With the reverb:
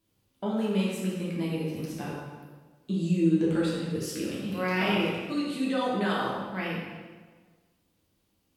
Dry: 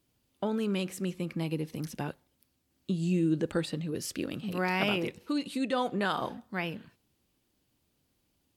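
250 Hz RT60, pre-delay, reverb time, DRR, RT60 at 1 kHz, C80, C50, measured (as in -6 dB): 1.4 s, 6 ms, 1.5 s, -6.0 dB, 1.4 s, 2.5 dB, -0.5 dB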